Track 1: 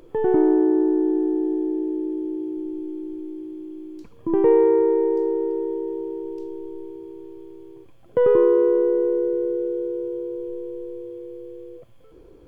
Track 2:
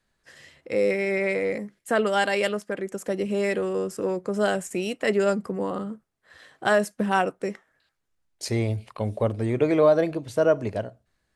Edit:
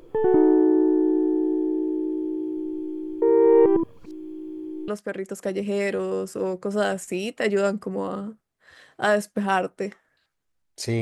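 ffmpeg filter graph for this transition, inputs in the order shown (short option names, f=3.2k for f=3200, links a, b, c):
-filter_complex "[0:a]apad=whole_dur=11.01,atrim=end=11.01,asplit=2[a][b];[a]atrim=end=3.222[c];[b]atrim=start=3.218:end=4.882,asetpts=PTS-STARTPTS,areverse[d];[1:a]atrim=start=2.508:end=8.64[e];[c][d]acrossfade=d=0.004:c1=hsin:c2=hsin[f];[f][e]acrossfade=d=0.004:c1=hsin:c2=hsin"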